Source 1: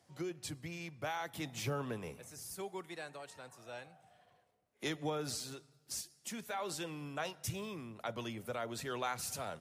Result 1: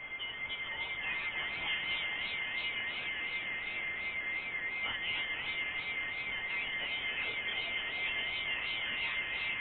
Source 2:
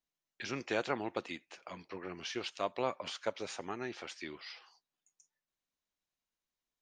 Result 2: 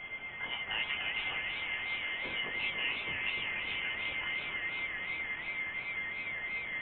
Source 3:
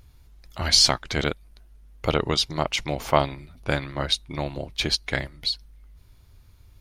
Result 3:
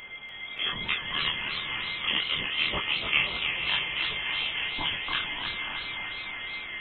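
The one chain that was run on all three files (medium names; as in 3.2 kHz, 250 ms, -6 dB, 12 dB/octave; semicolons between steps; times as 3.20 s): gate with hold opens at -44 dBFS; in parallel at -1 dB: compression, threshold -33 dBFS; on the sum: word length cut 6-bit, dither triangular; whistle 1.2 kHz -34 dBFS; chorus voices 4, 0.46 Hz, delay 23 ms, depth 3.2 ms; on a send: echo that smears into a reverb 535 ms, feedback 47%, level -6 dB; on the sum: frequency inversion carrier 3.3 kHz; modulated delay 296 ms, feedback 63%, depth 189 cents, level -6.5 dB; trim -4 dB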